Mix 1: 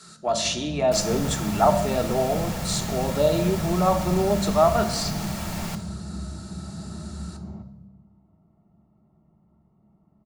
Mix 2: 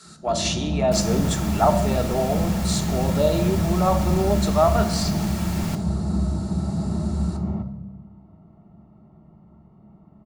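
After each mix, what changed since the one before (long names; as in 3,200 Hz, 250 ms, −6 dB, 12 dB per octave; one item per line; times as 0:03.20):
first sound +11.0 dB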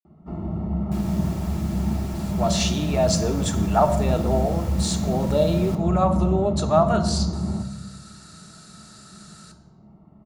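speech: entry +2.15 s
second sound −8.0 dB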